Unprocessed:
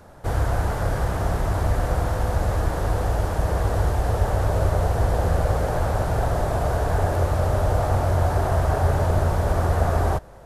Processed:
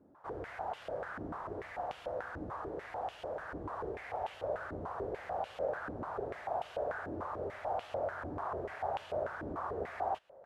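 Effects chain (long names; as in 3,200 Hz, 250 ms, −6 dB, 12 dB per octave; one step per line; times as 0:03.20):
0:03.94–0:04.34: parametric band 2,200 Hz +7 dB 0.33 octaves
band-pass on a step sequencer 6.8 Hz 290–2,900 Hz
level −3.5 dB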